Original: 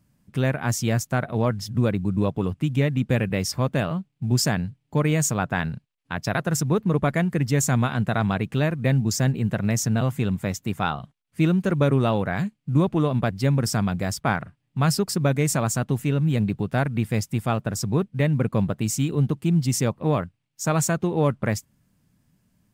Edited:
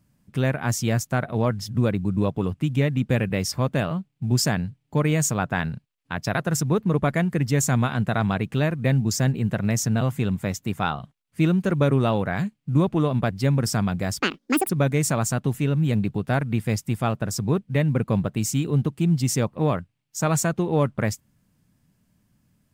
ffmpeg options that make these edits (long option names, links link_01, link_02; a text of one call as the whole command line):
ffmpeg -i in.wav -filter_complex "[0:a]asplit=3[link_01][link_02][link_03];[link_01]atrim=end=14.204[link_04];[link_02]atrim=start=14.2:end=15.14,asetpts=PTS-STARTPTS,asetrate=83790,aresample=44100[link_05];[link_03]atrim=start=15.136[link_06];[link_04][link_05]acrossfade=duration=0.004:curve1=hsin:curve2=hsin[link_07];[link_07][link_06]acrossfade=duration=0.004:curve1=hsin:curve2=hsin" out.wav